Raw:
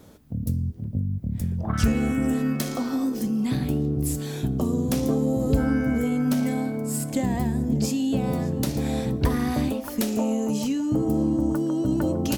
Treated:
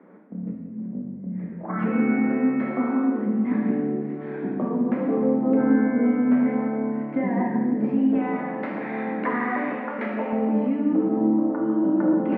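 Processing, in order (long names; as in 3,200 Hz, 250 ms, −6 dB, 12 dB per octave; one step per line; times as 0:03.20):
Chebyshev band-pass filter 190–2,100 Hz, order 4
0:08.15–0:10.33: tilt shelving filter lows −8.5 dB, about 650 Hz
dense smooth reverb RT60 1.4 s, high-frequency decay 1×, DRR −2 dB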